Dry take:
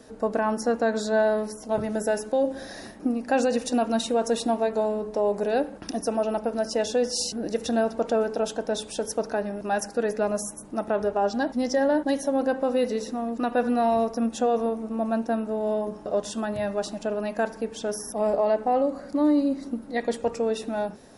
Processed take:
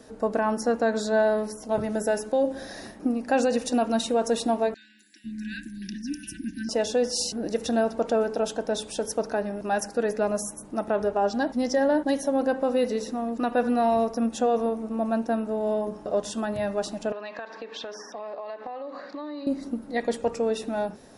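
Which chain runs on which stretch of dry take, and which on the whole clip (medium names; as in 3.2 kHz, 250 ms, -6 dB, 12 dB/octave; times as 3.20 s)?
4.74–6.69 s: brick-wall FIR band-stop 360–1500 Hz + three bands offset in time mids, highs, lows 250/500 ms, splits 490/5700 Hz
17.12–19.47 s: cabinet simulation 370–5300 Hz, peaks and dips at 1.1 kHz +8 dB, 1.8 kHz +8 dB, 2.6 kHz +6 dB, 3.9 kHz +9 dB + compression 12:1, threshold -32 dBFS
whole clip: none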